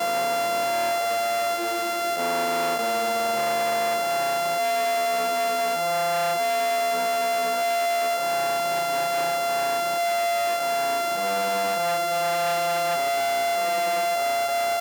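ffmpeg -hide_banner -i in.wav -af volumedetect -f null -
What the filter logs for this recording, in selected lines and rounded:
mean_volume: -23.9 dB
max_volume: -15.5 dB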